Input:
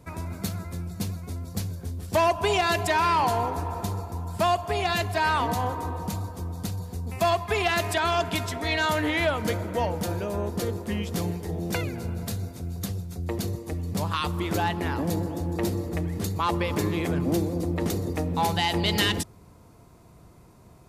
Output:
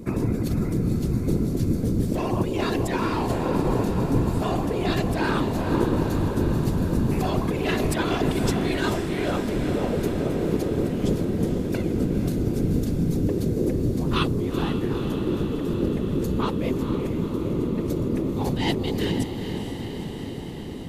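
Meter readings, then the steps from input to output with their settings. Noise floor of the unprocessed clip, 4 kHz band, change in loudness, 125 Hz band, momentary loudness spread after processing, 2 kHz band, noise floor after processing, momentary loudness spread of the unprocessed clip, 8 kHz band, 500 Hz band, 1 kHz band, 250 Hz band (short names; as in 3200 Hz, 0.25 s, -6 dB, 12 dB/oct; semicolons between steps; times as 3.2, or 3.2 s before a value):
-52 dBFS, -4.0 dB, +2.5 dB, +4.5 dB, 3 LU, -4.5 dB, -32 dBFS, 10 LU, -3.5 dB, +2.5 dB, -5.0 dB, +7.5 dB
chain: HPF 110 Hz 24 dB/oct; resonant low shelf 510 Hz +12 dB, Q 1.5; limiter -12.5 dBFS, peak gain reduction 9.5 dB; negative-ratio compressor -25 dBFS, ratio -1; whisperiser; diffused feedback echo 0.466 s, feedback 74%, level -8 dB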